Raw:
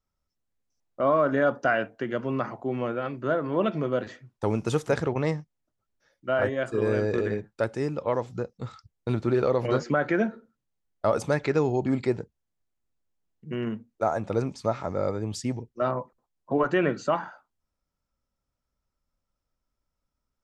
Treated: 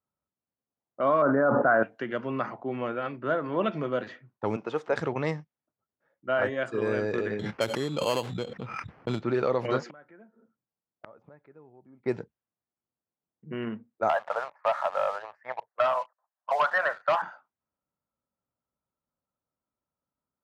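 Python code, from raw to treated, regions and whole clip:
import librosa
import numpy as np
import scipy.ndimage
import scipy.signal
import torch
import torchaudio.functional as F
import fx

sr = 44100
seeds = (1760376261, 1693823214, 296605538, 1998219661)

y = fx.chain(x, sr, fx.steep_lowpass(hz=1500.0, slope=36),
    fx.env_flatten(amount_pct=100), at=(1.22, 1.83))
y = fx.chain(y, sr, fx.highpass(hz=550.0, slope=12),
    fx.tilt_eq(slope=-4.0), at=(4.56, 4.96))
y = fx.chain(y, sr, fx.high_shelf(hz=2300.0, db=-3.0),
    fx.sample_hold(seeds[0], rate_hz=3700.0, jitter_pct=0),
    fx.pre_swell(db_per_s=33.0), at=(7.39, 9.22))
y = fx.chain(y, sr, fx.gate_flip(shuts_db=-23.0, range_db=-26),
    fx.transformer_sat(knee_hz=2600.0), at=(9.8, 12.06))
y = fx.chain(y, sr, fx.ellip_bandpass(low_hz=610.0, high_hz=1800.0, order=3, stop_db=40),
    fx.leveller(passes=2),
    fx.band_squash(depth_pct=70), at=(14.09, 17.22))
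y = fx.weighting(y, sr, curve='A')
y = fx.env_lowpass(y, sr, base_hz=1100.0, full_db=-25.0)
y = fx.bass_treble(y, sr, bass_db=11, treble_db=-4)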